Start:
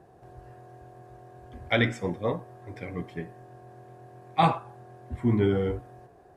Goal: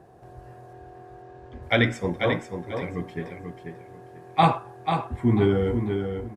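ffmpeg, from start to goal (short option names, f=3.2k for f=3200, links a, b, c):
-filter_complex "[0:a]asettb=1/sr,asplit=3[a][b][c];[a]atrim=end=0.734[d];[b]atrim=start=0.73:end=1.63,asetpts=PTS-STARTPTS,afade=t=in:d=0.004:c=qsin,afade=t=out:st=0.896:d=0.004:c=qsin,lowpass=5.1k[e];[c]atrim=start=1.626[f];[d][e]acrossfade=d=0.004:c1=hsin:c2=qsin[g];[g][f]acrossfade=d=0.004:c1=qsin:c2=hsin,aecho=1:1:490|980|1470:0.473|0.104|0.0229,volume=3dB"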